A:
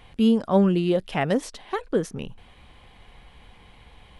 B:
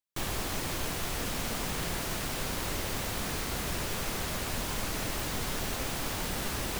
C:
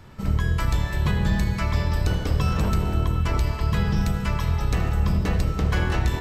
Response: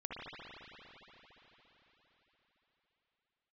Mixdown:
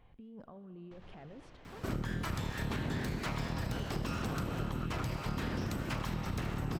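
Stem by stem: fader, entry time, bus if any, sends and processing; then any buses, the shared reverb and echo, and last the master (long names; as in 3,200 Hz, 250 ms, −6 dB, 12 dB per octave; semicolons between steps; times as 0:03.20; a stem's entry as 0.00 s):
−16.5 dB, 0.00 s, bus A, send −18 dB, brickwall limiter −15.5 dBFS, peak gain reduction 7 dB; compressor whose output falls as the input rises −30 dBFS, ratio −1
−13.5 dB, 0.75 s, bus A, no send, high-shelf EQ 2,100 Hz +8.5 dB; automatic ducking −9 dB, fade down 1.90 s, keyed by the first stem
+1.0 dB, 1.65 s, no bus, no send, full-wave rectification; high-pass filter 43 Hz
bus A: 0.0 dB, head-to-tape spacing loss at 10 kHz 44 dB; brickwall limiter −43 dBFS, peak gain reduction 9 dB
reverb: on, RT60 4.5 s, pre-delay 57 ms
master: downward compressor 6 to 1, threshold −33 dBFS, peak gain reduction 11.5 dB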